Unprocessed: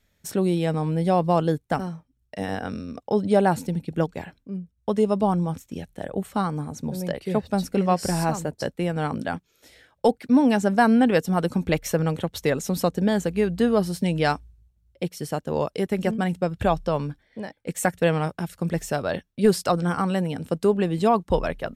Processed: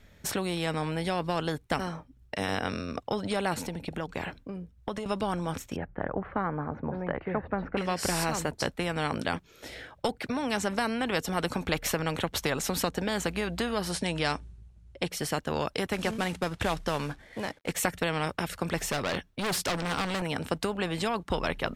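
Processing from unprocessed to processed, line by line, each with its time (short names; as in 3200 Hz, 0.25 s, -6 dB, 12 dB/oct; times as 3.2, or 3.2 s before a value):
3.54–5.06 compressor 4:1, threshold -31 dBFS
5.76–7.77 LPF 1700 Hz 24 dB/oct
13.91–15.11 careless resampling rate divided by 2×, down none, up filtered
15.93–17.72 CVSD 64 kbps
18.91–20.22 hard clip -24.5 dBFS
whole clip: high shelf 4400 Hz -11 dB; compressor 3:1, threshold -21 dBFS; spectral compressor 2:1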